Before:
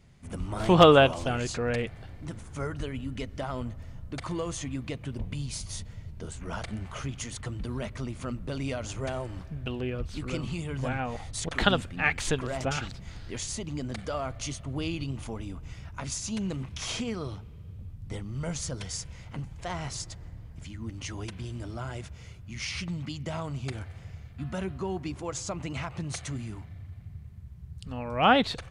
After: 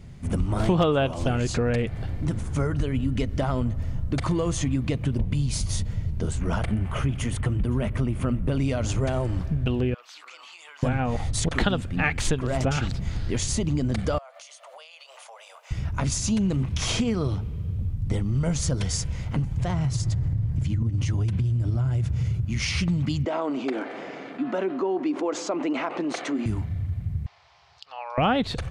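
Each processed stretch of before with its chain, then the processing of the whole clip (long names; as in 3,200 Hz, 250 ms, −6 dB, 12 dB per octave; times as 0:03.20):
0:06.58–0:08.59: flat-topped bell 5,300 Hz −8.5 dB 1.2 octaves + single-tap delay 514 ms −21.5 dB
0:09.94–0:10.83: high-pass filter 860 Hz 24 dB per octave + parametric band 9,200 Hz −12 dB 0.32 octaves + downward compressor 8 to 1, threshold −49 dBFS
0:14.18–0:15.71: Butterworth high-pass 540 Hz 72 dB per octave + downward compressor 12 to 1, threshold −50 dBFS
0:19.57–0:22.45: parametric band 120 Hz +13.5 dB 0.99 octaves + downward compressor 4 to 1, threshold −33 dBFS
0:23.25–0:26.46: elliptic high-pass filter 270 Hz, stop band 70 dB + head-to-tape spacing loss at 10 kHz 23 dB + envelope flattener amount 50%
0:27.26–0:28.18: elliptic band-pass filter 760–5,200 Hz, stop band 50 dB + parametric band 1,700 Hz −7 dB 0.85 octaves + upward compression, threshold −52 dBFS
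whole clip: low-shelf EQ 420 Hz +8 dB; downward compressor 4 to 1, threshold −28 dBFS; level +7 dB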